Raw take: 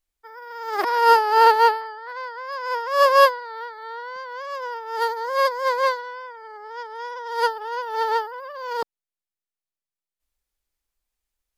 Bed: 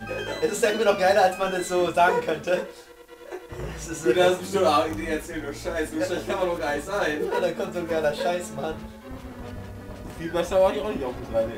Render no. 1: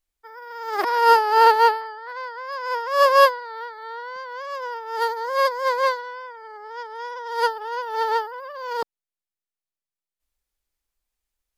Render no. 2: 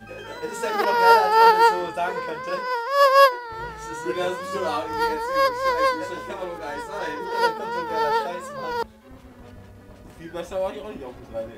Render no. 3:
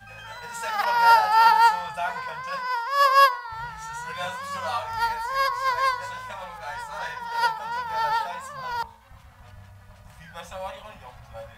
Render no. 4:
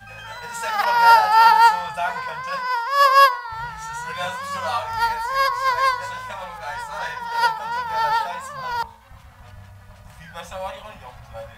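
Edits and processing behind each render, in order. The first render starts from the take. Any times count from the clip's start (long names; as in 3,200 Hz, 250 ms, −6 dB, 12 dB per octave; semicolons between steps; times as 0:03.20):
no processing that can be heard
mix in bed −7 dB
Chebyshev band-stop filter 140–790 Hz, order 2; hum removal 57.01 Hz, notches 22
level +4 dB; brickwall limiter −2 dBFS, peak gain reduction 1 dB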